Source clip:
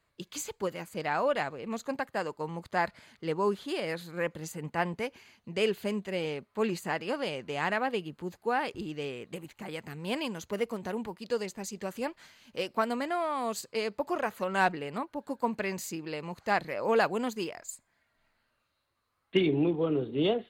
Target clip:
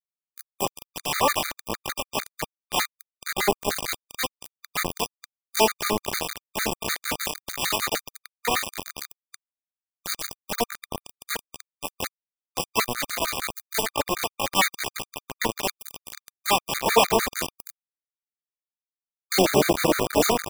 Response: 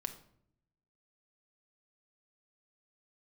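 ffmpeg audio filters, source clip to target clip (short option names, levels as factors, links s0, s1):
-filter_complex "[0:a]asplit=3[s0][s1][s2];[s1]asetrate=66075,aresample=44100,atempo=0.66742,volume=0.708[s3];[s2]asetrate=88200,aresample=44100,atempo=0.5,volume=0.794[s4];[s0][s3][s4]amix=inputs=3:normalize=0,asuperstop=centerf=1500:order=8:qfactor=3.3,aecho=1:1:214|428|642|856|1070|1284|1498:0.398|0.223|0.125|0.0699|0.0392|0.0219|0.0123,asplit=2[s5][s6];[1:a]atrim=start_sample=2205,atrim=end_sample=3087[s7];[s6][s7]afir=irnorm=-1:irlink=0,volume=0.501[s8];[s5][s8]amix=inputs=2:normalize=0,aeval=exprs='val(0)*gte(abs(val(0)),0.1)':c=same,highshelf=f=7500:g=7,afftfilt=real='re*gt(sin(2*PI*6.6*pts/sr)*(1-2*mod(floor(b*sr/1024/1200),2)),0)':imag='im*gt(sin(2*PI*6.6*pts/sr)*(1-2*mod(floor(b*sr/1024/1200),2)),0)':win_size=1024:overlap=0.75,volume=1.5"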